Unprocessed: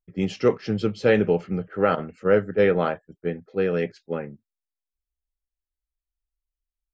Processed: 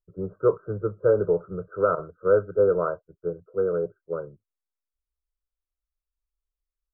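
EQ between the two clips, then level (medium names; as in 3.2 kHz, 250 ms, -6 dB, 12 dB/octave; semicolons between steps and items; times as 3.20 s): dynamic bell 820 Hz, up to +5 dB, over -43 dBFS, Q 5.6; brick-wall FIR low-pass 1.6 kHz; static phaser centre 1.2 kHz, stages 8; 0.0 dB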